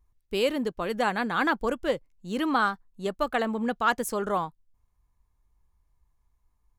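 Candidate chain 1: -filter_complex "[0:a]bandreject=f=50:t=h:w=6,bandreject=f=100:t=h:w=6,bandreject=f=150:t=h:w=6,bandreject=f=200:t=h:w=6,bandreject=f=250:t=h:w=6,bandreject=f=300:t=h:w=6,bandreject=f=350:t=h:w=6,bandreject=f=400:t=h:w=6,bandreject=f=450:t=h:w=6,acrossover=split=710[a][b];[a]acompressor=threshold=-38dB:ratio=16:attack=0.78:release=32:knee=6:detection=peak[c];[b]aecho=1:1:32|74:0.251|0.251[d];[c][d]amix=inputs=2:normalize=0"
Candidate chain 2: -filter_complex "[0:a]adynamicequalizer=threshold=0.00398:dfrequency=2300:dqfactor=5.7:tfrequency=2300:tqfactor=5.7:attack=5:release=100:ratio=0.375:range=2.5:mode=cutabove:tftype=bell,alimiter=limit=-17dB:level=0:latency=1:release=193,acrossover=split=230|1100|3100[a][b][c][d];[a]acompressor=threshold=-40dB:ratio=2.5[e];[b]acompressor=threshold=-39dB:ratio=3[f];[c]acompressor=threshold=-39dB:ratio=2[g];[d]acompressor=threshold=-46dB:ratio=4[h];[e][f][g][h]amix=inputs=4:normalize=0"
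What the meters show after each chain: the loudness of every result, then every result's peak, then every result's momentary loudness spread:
-30.5, -35.5 LUFS; -11.0, -20.5 dBFS; 11, 6 LU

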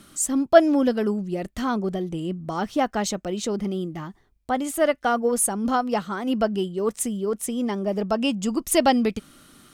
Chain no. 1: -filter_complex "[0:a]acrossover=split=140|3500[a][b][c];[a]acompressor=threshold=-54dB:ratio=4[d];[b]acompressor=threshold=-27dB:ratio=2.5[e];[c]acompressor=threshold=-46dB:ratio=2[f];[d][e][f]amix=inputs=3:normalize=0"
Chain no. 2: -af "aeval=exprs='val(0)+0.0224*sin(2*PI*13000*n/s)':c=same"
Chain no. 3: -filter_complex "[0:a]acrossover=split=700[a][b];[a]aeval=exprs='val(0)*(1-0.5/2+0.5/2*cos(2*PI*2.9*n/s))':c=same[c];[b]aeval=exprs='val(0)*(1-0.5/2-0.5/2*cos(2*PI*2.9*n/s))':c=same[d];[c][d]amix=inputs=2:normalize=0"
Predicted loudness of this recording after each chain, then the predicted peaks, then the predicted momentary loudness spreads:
-30.0, -23.5, -26.0 LUFS; -14.5, -1.0, -4.0 dBFS; 5, 9, 10 LU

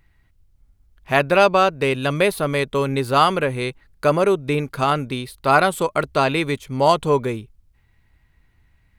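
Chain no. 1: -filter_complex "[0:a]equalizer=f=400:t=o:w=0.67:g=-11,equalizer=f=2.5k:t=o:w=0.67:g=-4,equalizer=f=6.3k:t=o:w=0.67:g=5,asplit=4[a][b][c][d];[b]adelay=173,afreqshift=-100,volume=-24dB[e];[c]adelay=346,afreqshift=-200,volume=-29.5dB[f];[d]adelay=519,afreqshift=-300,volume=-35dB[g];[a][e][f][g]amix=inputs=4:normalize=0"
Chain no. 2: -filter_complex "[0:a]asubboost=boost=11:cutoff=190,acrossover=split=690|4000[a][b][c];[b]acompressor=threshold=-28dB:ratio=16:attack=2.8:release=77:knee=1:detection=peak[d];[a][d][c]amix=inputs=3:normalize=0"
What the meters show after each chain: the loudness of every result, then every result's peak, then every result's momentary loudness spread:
-22.0, -17.0 LUFS; -3.5, -4.5 dBFS; 9, 7 LU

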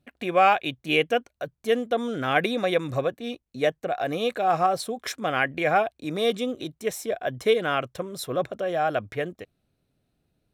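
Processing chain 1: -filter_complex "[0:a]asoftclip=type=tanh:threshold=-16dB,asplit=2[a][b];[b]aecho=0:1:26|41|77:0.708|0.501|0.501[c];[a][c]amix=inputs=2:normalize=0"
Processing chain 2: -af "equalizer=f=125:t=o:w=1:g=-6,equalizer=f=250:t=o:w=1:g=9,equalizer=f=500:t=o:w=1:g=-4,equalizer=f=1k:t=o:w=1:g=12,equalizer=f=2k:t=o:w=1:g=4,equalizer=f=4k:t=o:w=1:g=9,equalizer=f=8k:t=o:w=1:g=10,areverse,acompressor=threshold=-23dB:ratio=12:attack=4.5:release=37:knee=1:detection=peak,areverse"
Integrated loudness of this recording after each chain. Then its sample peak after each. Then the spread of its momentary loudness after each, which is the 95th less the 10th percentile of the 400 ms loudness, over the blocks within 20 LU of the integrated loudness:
-24.5, -27.0 LUFS; -8.0, -11.5 dBFS; 8, 5 LU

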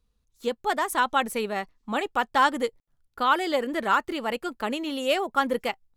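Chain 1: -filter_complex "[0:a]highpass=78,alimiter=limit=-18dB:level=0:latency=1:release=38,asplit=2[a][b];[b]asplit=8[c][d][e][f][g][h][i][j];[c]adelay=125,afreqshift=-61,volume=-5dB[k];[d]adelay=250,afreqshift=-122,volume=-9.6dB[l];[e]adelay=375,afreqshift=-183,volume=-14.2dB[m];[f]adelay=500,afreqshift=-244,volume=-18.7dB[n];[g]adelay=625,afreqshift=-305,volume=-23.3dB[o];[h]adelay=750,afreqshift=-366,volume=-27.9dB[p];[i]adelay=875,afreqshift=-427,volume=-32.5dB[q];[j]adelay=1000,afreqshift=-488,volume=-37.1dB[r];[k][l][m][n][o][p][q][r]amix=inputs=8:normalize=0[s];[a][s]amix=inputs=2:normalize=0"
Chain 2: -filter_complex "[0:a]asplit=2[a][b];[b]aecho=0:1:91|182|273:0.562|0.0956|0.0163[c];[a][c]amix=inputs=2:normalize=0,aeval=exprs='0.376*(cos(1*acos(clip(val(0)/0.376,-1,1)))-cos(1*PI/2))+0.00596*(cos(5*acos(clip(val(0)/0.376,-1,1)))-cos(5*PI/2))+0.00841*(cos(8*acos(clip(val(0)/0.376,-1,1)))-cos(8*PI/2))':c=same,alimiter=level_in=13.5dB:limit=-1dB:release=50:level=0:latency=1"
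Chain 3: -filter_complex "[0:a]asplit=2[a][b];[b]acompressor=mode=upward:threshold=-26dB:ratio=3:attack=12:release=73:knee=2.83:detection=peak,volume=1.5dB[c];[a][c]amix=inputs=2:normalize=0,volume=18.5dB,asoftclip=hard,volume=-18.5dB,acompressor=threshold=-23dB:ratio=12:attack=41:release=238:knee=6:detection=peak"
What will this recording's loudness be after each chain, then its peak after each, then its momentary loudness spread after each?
-28.0, -12.5, -26.5 LUFS; -14.0, -1.0, -18.5 dBFS; 5, 6, 4 LU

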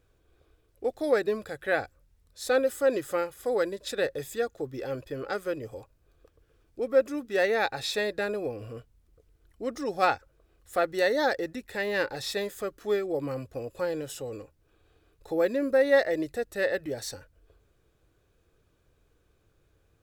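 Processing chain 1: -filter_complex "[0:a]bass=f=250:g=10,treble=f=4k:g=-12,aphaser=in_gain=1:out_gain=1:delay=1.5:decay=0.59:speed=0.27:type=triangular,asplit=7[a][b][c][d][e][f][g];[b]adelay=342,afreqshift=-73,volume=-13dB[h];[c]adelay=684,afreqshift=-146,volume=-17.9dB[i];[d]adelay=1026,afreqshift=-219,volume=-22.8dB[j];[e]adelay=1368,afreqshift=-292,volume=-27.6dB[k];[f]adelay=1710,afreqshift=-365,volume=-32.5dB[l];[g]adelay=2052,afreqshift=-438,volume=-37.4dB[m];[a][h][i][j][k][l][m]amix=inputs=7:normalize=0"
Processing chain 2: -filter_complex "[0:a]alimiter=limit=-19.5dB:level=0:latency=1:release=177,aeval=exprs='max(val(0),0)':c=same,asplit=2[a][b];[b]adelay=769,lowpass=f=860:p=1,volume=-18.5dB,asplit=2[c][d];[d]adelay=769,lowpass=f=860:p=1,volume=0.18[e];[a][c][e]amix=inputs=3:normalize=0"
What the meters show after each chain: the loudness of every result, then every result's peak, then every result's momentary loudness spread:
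-26.5, -36.5 LUFS; -7.0, -19.0 dBFS; 19, 11 LU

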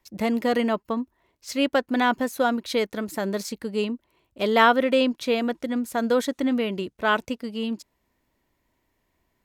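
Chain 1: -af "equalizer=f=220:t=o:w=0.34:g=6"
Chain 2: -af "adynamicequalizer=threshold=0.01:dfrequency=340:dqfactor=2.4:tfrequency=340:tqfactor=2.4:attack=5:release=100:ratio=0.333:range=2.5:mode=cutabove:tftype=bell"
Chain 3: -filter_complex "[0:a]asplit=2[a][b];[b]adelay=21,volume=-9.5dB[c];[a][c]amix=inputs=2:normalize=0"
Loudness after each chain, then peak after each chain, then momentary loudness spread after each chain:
-23.0, -25.0, -24.0 LUFS; -4.5, -4.0, -4.0 dBFS; 8, 11, 11 LU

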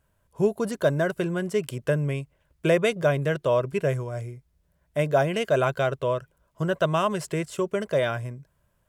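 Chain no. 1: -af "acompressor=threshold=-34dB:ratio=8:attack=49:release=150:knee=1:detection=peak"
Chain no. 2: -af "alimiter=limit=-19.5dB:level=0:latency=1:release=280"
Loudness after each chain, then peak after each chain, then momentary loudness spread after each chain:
-35.0, -31.0 LUFS; -12.5, -19.5 dBFS; 6, 7 LU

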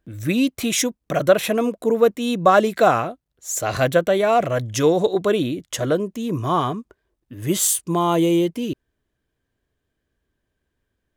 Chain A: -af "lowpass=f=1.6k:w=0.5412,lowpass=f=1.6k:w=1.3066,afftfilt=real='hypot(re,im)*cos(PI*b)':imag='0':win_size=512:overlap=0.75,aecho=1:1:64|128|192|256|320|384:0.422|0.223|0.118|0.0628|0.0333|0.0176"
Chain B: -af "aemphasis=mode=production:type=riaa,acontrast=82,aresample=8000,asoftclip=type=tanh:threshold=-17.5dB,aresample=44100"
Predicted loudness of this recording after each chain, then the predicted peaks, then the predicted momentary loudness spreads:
-21.5, -22.5 LUFS; -4.5, -13.0 dBFS; 12, 7 LU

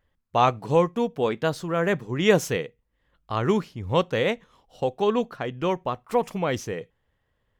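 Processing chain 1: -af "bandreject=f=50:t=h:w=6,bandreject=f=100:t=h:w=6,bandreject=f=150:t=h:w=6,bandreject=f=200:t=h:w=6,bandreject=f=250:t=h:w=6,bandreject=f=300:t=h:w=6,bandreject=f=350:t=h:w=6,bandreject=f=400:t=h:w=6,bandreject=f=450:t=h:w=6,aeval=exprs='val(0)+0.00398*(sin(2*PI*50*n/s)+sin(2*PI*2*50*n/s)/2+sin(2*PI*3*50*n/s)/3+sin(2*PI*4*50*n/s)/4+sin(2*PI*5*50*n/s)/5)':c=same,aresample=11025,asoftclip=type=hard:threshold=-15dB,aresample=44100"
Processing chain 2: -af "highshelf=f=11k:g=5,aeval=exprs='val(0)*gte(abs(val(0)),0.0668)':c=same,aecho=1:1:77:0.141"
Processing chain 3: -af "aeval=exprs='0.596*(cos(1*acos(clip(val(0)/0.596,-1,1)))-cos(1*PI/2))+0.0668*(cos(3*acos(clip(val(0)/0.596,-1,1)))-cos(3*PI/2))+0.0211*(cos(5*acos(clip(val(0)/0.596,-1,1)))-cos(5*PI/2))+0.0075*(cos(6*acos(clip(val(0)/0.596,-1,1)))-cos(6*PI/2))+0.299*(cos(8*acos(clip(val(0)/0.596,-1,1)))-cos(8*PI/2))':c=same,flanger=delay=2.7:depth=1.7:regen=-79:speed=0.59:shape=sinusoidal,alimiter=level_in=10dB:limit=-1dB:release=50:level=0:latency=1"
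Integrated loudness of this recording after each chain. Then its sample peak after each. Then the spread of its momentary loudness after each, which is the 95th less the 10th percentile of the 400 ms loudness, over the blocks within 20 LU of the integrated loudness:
-26.5, -25.5, -17.5 LUFS; -13.5, -4.5, -1.0 dBFS; 8, 11, 6 LU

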